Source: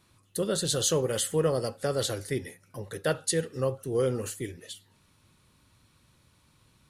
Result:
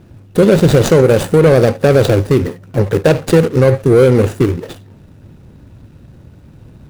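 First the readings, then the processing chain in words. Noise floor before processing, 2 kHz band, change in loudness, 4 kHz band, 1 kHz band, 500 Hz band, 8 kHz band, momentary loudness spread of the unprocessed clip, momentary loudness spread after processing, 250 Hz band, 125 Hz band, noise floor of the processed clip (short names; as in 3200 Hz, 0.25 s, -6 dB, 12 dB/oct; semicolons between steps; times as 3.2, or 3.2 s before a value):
-65 dBFS, +17.0 dB, +17.5 dB, +7.0 dB, +16.5 dB, +18.5 dB, +2.0 dB, 16 LU, 8 LU, +21.0 dB, +21.5 dB, -42 dBFS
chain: median filter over 41 samples; maximiser +27 dB; gain -1 dB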